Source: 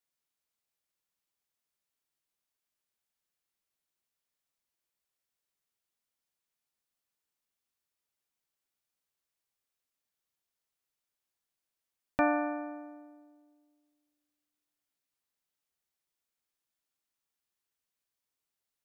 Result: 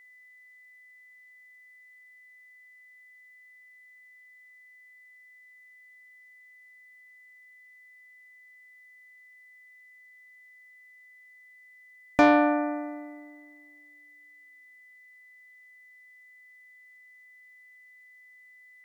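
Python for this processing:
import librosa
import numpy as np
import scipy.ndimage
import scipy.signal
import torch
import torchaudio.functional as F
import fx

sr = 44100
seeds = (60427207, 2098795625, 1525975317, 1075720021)

y = fx.cheby_harmonics(x, sr, harmonics=(5,), levels_db=(-19,), full_scale_db=-14.5)
y = y + 10.0 ** (-59.0 / 20.0) * np.sin(2.0 * np.pi * 2000.0 * np.arange(len(y)) / sr)
y = F.gain(torch.from_numpy(y), 7.0).numpy()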